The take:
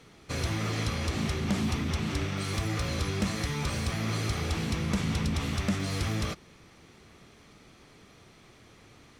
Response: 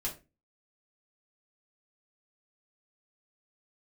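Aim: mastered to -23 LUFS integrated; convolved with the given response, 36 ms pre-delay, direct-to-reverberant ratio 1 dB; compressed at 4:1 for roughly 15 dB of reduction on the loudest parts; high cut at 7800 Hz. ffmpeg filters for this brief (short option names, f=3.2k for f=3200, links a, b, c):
-filter_complex "[0:a]lowpass=7.8k,acompressor=threshold=-44dB:ratio=4,asplit=2[a][b];[1:a]atrim=start_sample=2205,adelay=36[c];[b][c]afir=irnorm=-1:irlink=0,volume=-3dB[d];[a][d]amix=inputs=2:normalize=0,volume=19.5dB"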